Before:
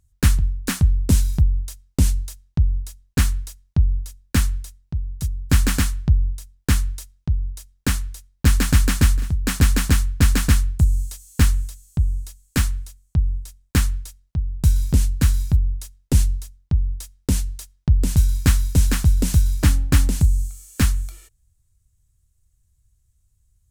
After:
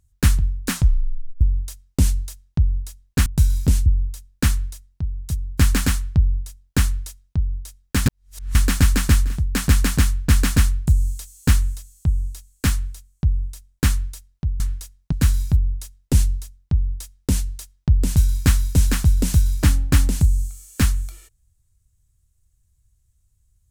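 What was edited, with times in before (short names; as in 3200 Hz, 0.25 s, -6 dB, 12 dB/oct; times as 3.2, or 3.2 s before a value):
0.72 tape stop 0.69 s
3.26–3.78 swap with 14.52–15.12
7.98–8.47 reverse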